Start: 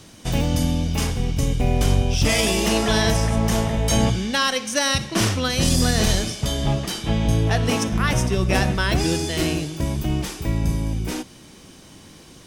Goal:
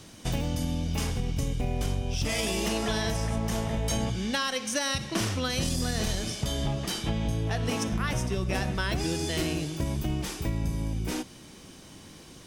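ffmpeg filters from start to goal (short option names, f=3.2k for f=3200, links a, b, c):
-af "acompressor=threshold=-22dB:ratio=6,volume=-3dB"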